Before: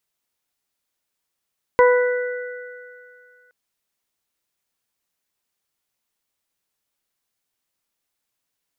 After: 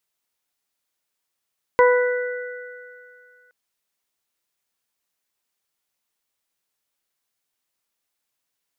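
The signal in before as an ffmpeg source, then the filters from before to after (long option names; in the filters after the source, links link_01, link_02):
-f lavfi -i "aevalsrc='0.316*pow(10,-3*t/2.04)*sin(2*PI*494*t)+0.211*pow(10,-3*t/0.71)*sin(2*PI*988*t)+0.0794*pow(10,-3*t/3.13)*sin(2*PI*1482*t)+0.0794*pow(10,-3*t/2.27)*sin(2*PI*1976*t)':duration=1.72:sample_rate=44100"
-af "lowshelf=frequency=290:gain=-5"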